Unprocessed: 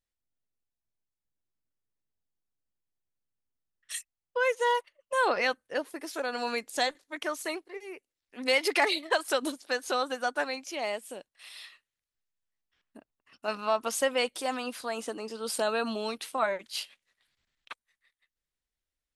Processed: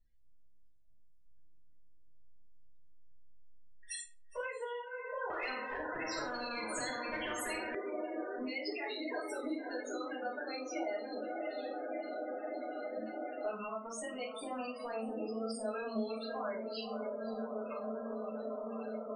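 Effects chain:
brickwall limiter −25 dBFS, peak gain reduction 11 dB
feedback delay with all-pass diffusion 558 ms, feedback 74%, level −7.5 dB
spectral peaks only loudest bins 16
downward compressor 6 to 1, threshold −49 dBFS, peak gain reduction 19 dB
rectangular room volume 230 cubic metres, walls furnished, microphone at 6.2 metres
0:05.30–0:07.75: every bin compressed towards the loudest bin 4 to 1

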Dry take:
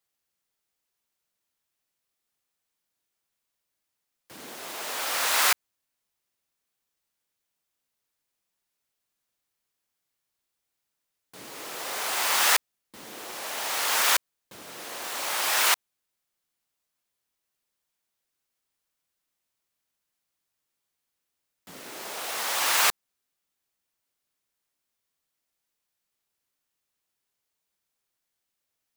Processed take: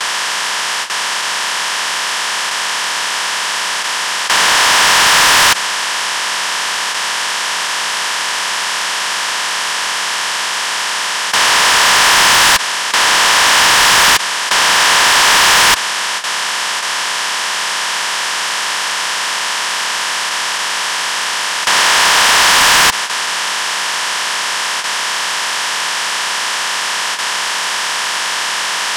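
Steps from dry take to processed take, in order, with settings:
compressor on every frequency bin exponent 0.2
loudspeaker in its box 160–9,700 Hz, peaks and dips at 180 Hz +6 dB, 1,000 Hz +7 dB, 1,700 Hz +6 dB, 3,100 Hz +6 dB, 5,300 Hz +5 dB
in parallel at −8 dB: sine wavefolder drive 12 dB, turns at −0.5 dBFS
on the sum: noise gate with hold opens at −7 dBFS
level −1.5 dB

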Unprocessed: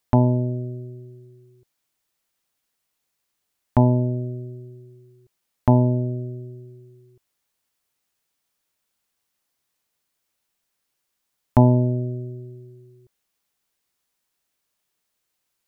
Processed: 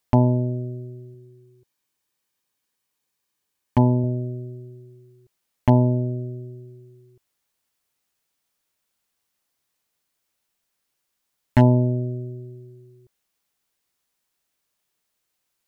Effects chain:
wave folding −6.5 dBFS
0:01.14–0:04.04: notch comb filter 680 Hz

